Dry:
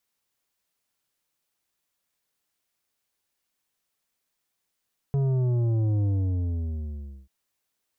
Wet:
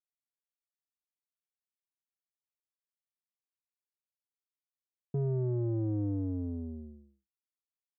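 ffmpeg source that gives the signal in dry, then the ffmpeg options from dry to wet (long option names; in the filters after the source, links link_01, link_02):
-f lavfi -i "aevalsrc='0.0794*clip((2.14-t)/1.24,0,1)*tanh(2.82*sin(2*PI*140*2.14/log(65/140)*(exp(log(65/140)*t/2.14)-1)))/tanh(2.82)':duration=2.14:sample_rate=44100"
-filter_complex "[0:a]agate=range=-33dB:threshold=-29dB:ratio=3:detection=peak,asplit=2[link_01][link_02];[link_02]asoftclip=type=tanh:threshold=-34dB,volume=-4dB[link_03];[link_01][link_03]amix=inputs=2:normalize=0,bandpass=frequency=290:width_type=q:width=1.5:csg=0"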